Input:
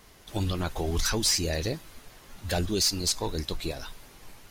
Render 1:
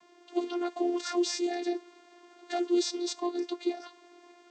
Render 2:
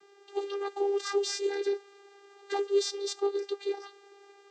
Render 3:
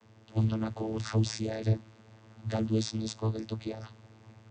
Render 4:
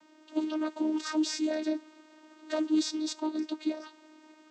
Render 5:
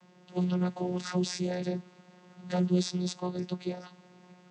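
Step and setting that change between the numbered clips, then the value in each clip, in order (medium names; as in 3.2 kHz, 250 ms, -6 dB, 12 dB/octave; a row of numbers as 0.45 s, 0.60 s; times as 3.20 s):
vocoder, frequency: 350 Hz, 400 Hz, 110 Hz, 310 Hz, 180 Hz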